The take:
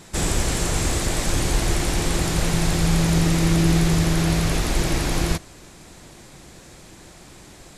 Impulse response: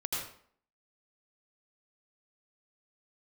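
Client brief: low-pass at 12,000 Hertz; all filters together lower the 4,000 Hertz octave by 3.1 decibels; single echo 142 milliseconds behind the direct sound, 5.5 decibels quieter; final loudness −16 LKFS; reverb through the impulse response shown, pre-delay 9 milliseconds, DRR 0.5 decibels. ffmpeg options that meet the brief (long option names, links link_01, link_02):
-filter_complex "[0:a]lowpass=12000,equalizer=frequency=4000:width_type=o:gain=-4,aecho=1:1:142:0.531,asplit=2[link_01][link_02];[1:a]atrim=start_sample=2205,adelay=9[link_03];[link_02][link_03]afir=irnorm=-1:irlink=0,volume=-5dB[link_04];[link_01][link_04]amix=inputs=2:normalize=0,volume=3.5dB"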